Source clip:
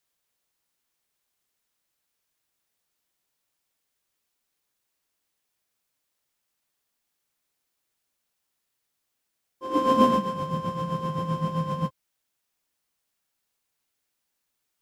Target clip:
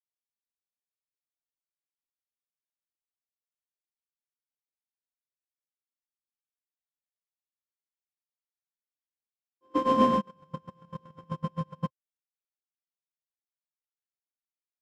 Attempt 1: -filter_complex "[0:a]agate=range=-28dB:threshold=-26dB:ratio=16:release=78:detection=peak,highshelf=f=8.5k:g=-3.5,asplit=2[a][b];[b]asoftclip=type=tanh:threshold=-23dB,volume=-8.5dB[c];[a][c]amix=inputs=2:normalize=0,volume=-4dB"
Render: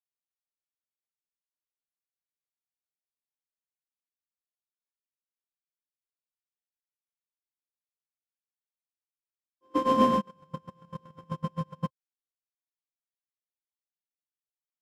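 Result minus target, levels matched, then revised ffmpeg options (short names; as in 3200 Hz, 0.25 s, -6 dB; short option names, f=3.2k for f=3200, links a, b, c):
8000 Hz band +3.5 dB
-filter_complex "[0:a]agate=range=-28dB:threshold=-26dB:ratio=16:release=78:detection=peak,highshelf=f=8.5k:g=-12,asplit=2[a][b];[b]asoftclip=type=tanh:threshold=-23dB,volume=-8.5dB[c];[a][c]amix=inputs=2:normalize=0,volume=-4dB"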